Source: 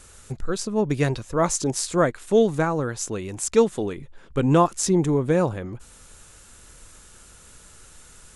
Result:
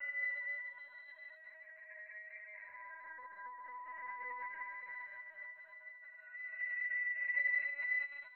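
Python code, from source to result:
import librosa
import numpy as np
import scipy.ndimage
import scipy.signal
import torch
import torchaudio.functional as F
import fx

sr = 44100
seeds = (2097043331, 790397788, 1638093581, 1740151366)

y = fx.band_shuffle(x, sr, order='2143')
y = fx.filter_sweep_highpass(y, sr, from_hz=740.0, to_hz=1900.0, start_s=0.38, end_s=2.39, q=2.0)
y = fx.over_compress(y, sr, threshold_db=-17.0, ratio=-0.5)
y = fx.paulstretch(y, sr, seeds[0], factor=8.0, window_s=0.25, from_s=0.51)
y = scipy.signal.sosfilt(scipy.signal.cheby1(3, 1.0, [510.0, 3000.0], 'bandpass', fs=sr, output='sos'), y)
y = fx.octave_resonator(y, sr, note='B', decay_s=0.64)
y = y + 10.0 ** (-74.0 / 20.0) * np.sin(2.0 * np.pi * 630.0 * np.arange(len(y)) / sr)
y = y + 10.0 ** (-9.0 / 20.0) * np.pad(y, (int(143 * sr / 1000.0), 0))[:len(y)]
y = fx.rev_fdn(y, sr, rt60_s=0.6, lf_ratio=1.0, hf_ratio=0.55, size_ms=40.0, drr_db=15.0)
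y = fx.lpc_vocoder(y, sr, seeds[1], excitation='pitch_kept', order=16)
y = F.gain(torch.from_numpy(y), 4.5).numpy()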